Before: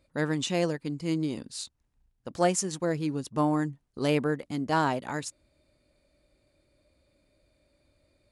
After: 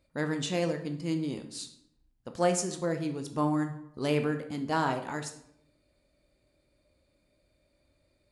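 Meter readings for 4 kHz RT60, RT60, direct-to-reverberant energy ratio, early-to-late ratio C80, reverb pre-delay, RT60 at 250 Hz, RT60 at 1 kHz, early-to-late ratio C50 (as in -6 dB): 0.50 s, 0.75 s, 6.0 dB, 14.0 dB, 14 ms, 0.90 s, 0.70 s, 10.0 dB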